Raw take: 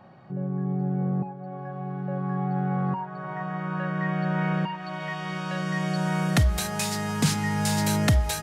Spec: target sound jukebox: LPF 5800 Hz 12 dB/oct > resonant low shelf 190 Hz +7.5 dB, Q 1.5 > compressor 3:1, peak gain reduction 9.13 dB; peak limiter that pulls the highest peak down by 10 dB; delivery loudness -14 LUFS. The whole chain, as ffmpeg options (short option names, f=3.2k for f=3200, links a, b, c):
-af "alimiter=limit=-20.5dB:level=0:latency=1,lowpass=5.8k,lowshelf=f=190:t=q:w=1.5:g=7.5,acompressor=threshold=-27dB:ratio=3,volume=16dB"